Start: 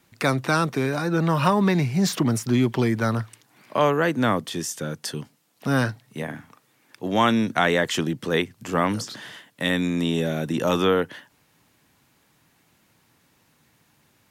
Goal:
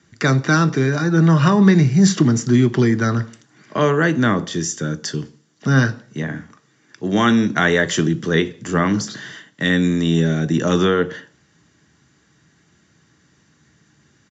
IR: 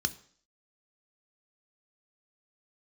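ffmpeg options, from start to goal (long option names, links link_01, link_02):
-filter_complex "[0:a]aresample=16000,aresample=44100[link_01];[1:a]atrim=start_sample=2205,asetrate=48510,aresample=44100[link_02];[link_01][link_02]afir=irnorm=-1:irlink=0,volume=-1dB"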